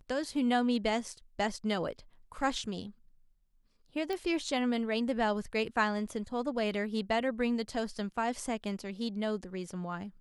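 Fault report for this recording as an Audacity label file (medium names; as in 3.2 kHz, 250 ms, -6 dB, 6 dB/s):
4.130000	4.130000	pop -23 dBFS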